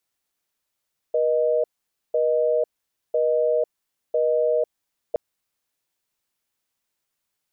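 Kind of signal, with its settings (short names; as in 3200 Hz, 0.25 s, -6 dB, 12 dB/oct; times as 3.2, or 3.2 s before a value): call progress tone busy tone, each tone -20.5 dBFS 4.02 s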